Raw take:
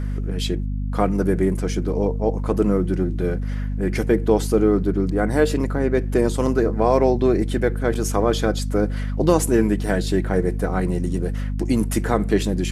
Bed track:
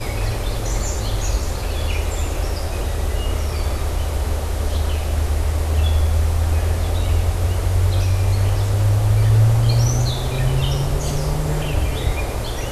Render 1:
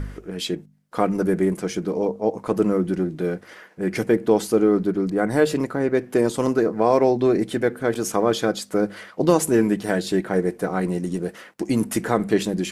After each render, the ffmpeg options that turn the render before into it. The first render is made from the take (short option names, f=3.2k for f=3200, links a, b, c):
-af "bandreject=f=50:t=h:w=4,bandreject=f=100:t=h:w=4,bandreject=f=150:t=h:w=4,bandreject=f=200:t=h:w=4,bandreject=f=250:t=h:w=4"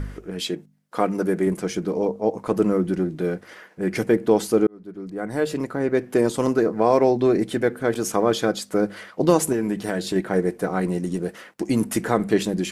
-filter_complex "[0:a]asettb=1/sr,asplit=3[a][b][c];[a]atrim=end=0.484[d];[b]atrim=start=0.48:end=1.47,asetpts=PTS-STARTPTS,afade=t=in:d=0.004:c=qsin,afade=t=out:st=0.986:d=0.004:c=qsin,highpass=f=190:p=1[e];[c]atrim=start=1.466[f];[d][e]acrossfade=d=0.004:c1=hsin:c2=qsin[g];[g][f]acrossfade=d=0.004:c1=qsin:c2=hsin,asettb=1/sr,asplit=3[h][i][j];[h]atrim=end=9.524[k];[i]atrim=start=9.52:end=10.16,asetpts=PTS-STARTPTS,afade=t=in:d=0.004:c=qsin,afade=t=out:st=0.636:d=0.004:c=qsin,acompressor=threshold=-19dB:ratio=5:attack=3.2:release=140:knee=1:detection=peak[l];[j]atrim=start=10.156[m];[k][l]acrossfade=d=0.004:c1=hsin:c2=qsin[n];[n][m]acrossfade=d=0.004:c1=qsin:c2=hsin,asplit=2[o][p];[o]atrim=end=4.67,asetpts=PTS-STARTPTS,afade=t=out:st=4.666:d=0.004:c=hsin[q];[p]atrim=start=4.67,asetpts=PTS-STARTPTS,afade=t=in:d=1.34[r];[q][r]concat=n=2:v=0:a=1"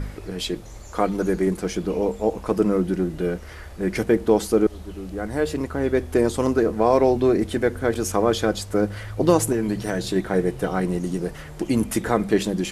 -filter_complex "[1:a]volume=-19dB[a];[0:a][a]amix=inputs=2:normalize=0"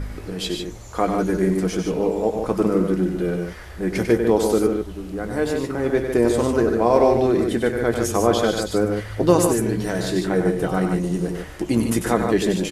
-filter_complex "[0:a]asplit=2[a][b];[b]adelay=17,volume=-11.5dB[c];[a][c]amix=inputs=2:normalize=0,aecho=1:1:96.21|148.7:0.447|0.501"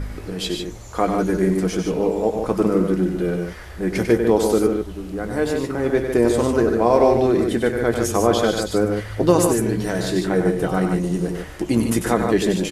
-af "volume=1dB,alimiter=limit=-3dB:level=0:latency=1"